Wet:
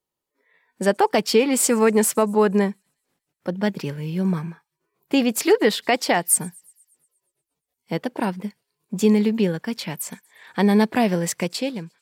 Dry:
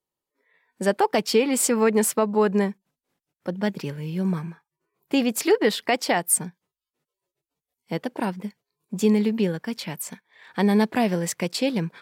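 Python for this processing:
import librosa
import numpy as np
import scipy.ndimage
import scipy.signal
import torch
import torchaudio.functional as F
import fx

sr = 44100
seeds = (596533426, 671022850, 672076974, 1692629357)

y = fx.fade_out_tail(x, sr, length_s=0.63)
y = fx.echo_wet_highpass(y, sr, ms=118, feedback_pct=58, hz=5400.0, wet_db=-24)
y = F.gain(torch.from_numpy(y), 2.5).numpy()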